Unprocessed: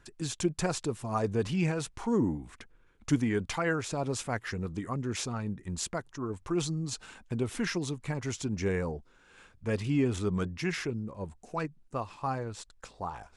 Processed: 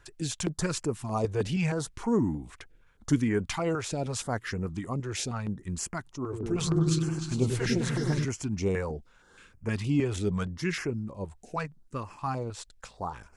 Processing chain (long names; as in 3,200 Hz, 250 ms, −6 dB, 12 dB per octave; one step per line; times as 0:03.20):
0:06.22–0:08.25: echo whose low-pass opens from repeat to repeat 101 ms, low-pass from 400 Hz, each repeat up 2 octaves, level 0 dB
notch on a step sequencer 6.4 Hz 220–3,700 Hz
level +2.5 dB